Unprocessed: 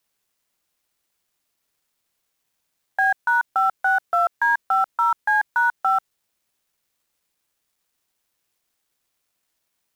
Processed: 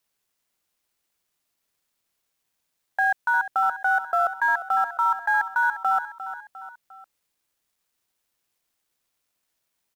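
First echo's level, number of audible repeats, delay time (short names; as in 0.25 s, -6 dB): -12.5 dB, 3, 0.352 s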